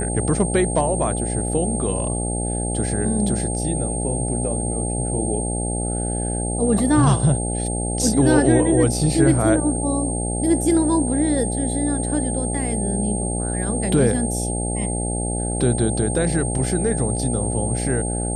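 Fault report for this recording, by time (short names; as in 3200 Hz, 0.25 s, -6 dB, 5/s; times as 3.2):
buzz 60 Hz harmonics 14 -25 dBFS
tone 8600 Hz -27 dBFS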